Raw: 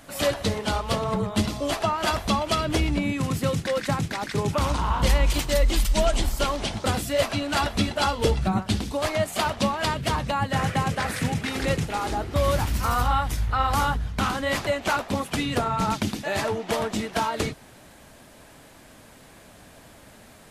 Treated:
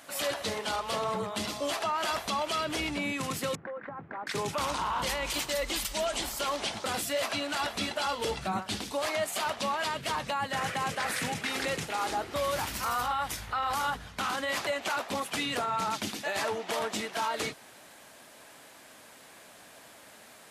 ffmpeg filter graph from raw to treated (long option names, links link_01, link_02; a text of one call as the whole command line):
ffmpeg -i in.wav -filter_complex "[0:a]asettb=1/sr,asplit=3[link_01][link_02][link_03];[link_01]atrim=end=3.554[link_04];[link_02]atrim=start=3.55:end=4.27,asetpts=PTS-STARTPTS,afade=type=in:duration=0.004:curve=qsin,afade=type=out:start_time=0.716:duration=0.004:curve=qsin,lowpass=frequency=1500:width=0.5412,lowpass=frequency=1500:width=1.3066,acompressor=threshold=-31dB:ratio=12:attack=3.2:release=140:knee=1:detection=peak[link_05];[link_03]atrim=start=4.266[link_06];[link_04][link_05]acrossfade=duration=0.004:curve1=hsin:curve2=qsin[link_07];[link_07][link_06]acrossfade=duration=0.004:curve1=qsin:curve2=hsin,highpass=frequency=650:poles=1,alimiter=limit=-22dB:level=0:latency=1:release=17" out.wav